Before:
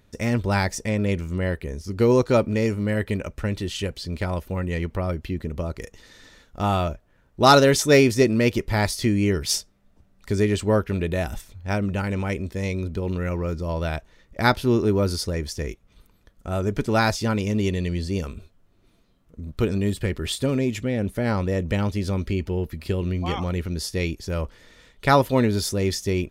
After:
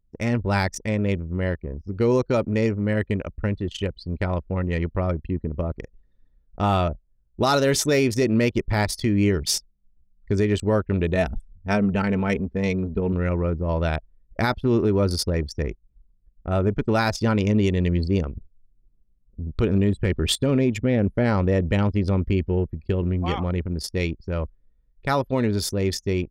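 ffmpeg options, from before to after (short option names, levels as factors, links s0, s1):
-filter_complex "[0:a]asettb=1/sr,asplit=3[s0][s1][s2];[s0]atrim=end=11.154[s3];[s1]atrim=start=11.15:end=13.13,asetpts=PTS-STARTPTS,afade=t=in:d=0.004:c=qsin,afade=t=out:st=1.976:d=0.004:c=qsin,aecho=1:1:4.5:0.54,atrim=end_sample=87318[s4];[s2]atrim=start=13.126[s5];[s3][s4]acrossfade=d=0.004:c1=hsin:c2=qsin[s6];[s6][s5]acrossfade=d=0.004:c1=qsin:c2=hsin,anlmdn=63.1,dynaudnorm=f=240:g=31:m=3.76,alimiter=limit=0.282:level=0:latency=1:release=130"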